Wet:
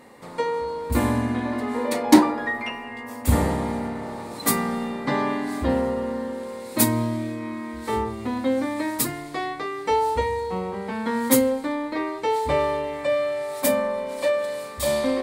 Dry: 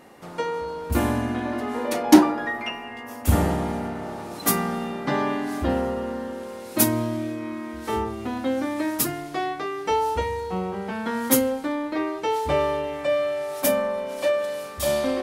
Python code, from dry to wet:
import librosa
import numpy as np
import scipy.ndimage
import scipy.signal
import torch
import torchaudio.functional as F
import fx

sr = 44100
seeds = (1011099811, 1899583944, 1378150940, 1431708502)

y = fx.ripple_eq(x, sr, per_octave=0.98, db=6)